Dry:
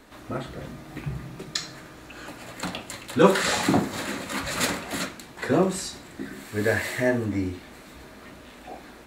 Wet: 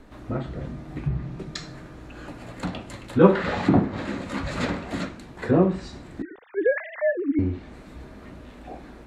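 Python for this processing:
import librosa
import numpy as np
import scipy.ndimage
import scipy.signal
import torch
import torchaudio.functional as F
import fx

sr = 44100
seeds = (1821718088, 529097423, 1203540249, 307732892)

y = fx.sine_speech(x, sr, at=(6.22, 7.39))
y = fx.tilt_eq(y, sr, slope=-2.5)
y = fx.env_lowpass_down(y, sr, base_hz=2900.0, full_db=-18.0)
y = y * librosa.db_to_amplitude(-1.5)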